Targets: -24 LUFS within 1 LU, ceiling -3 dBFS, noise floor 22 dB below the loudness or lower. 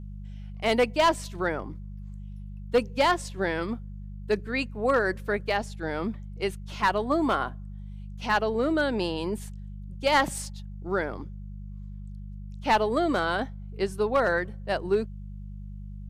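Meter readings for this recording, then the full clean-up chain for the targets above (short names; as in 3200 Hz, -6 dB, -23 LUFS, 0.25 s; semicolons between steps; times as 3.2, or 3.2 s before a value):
clipped 0.3%; flat tops at -15.0 dBFS; hum 50 Hz; harmonics up to 200 Hz; hum level -36 dBFS; loudness -27.5 LUFS; peak -15.0 dBFS; loudness target -24.0 LUFS
-> clip repair -15 dBFS; de-hum 50 Hz, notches 4; gain +3.5 dB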